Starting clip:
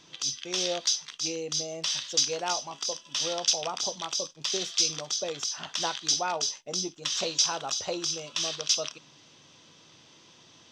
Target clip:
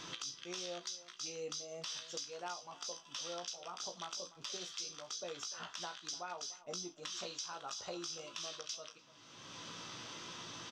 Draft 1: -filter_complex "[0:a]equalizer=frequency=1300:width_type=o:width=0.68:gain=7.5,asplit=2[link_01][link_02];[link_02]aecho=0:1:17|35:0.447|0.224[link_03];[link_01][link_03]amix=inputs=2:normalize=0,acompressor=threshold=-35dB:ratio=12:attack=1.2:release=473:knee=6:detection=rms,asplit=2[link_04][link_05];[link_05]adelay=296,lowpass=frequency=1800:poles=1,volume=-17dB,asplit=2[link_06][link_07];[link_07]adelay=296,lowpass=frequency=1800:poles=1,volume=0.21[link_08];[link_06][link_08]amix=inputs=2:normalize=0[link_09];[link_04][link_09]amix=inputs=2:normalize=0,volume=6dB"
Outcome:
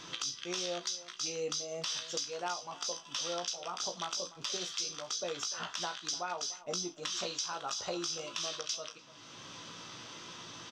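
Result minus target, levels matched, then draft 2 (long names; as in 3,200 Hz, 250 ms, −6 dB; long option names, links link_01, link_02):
downward compressor: peak gain reduction −7 dB
-filter_complex "[0:a]equalizer=frequency=1300:width_type=o:width=0.68:gain=7.5,asplit=2[link_01][link_02];[link_02]aecho=0:1:17|35:0.447|0.224[link_03];[link_01][link_03]amix=inputs=2:normalize=0,acompressor=threshold=-42.5dB:ratio=12:attack=1.2:release=473:knee=6:detection=rms,asplit=2[link_04][link_05];[link_05]adelay=296,lowpass=frequency=1800:poles=1,volume=-17dB,asplit=2[link_06][link_07];[link_07]adelay=296,lowpass=frequency=1800:poles=1,volume=0.21[link_08];[link_06][link_08]amix=inputs=2:normalize=0[link_09];[link_04][link_09]amix=inputs=2:normalize=0,volume=6dB"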